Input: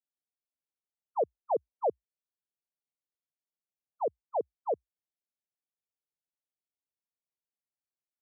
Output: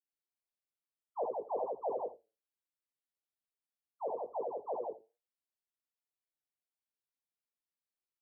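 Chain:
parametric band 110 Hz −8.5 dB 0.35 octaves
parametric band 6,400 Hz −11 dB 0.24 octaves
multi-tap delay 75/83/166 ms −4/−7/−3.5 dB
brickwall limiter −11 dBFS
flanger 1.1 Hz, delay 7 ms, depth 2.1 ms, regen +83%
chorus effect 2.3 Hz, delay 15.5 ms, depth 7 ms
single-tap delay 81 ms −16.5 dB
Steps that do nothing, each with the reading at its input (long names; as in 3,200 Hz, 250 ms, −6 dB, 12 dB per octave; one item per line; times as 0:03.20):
parametric band 6,400 Hz: nothing at its input above 1,100 Hz
brickwall limiter −11 dBFS: peak of its input −21.0 dBFS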